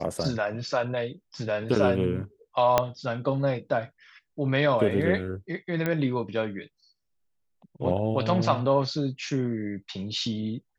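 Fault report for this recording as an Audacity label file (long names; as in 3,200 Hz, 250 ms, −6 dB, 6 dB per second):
2.780000	2.780000	click −6 dBFS
5.860000	5.860000	click −14 dBFS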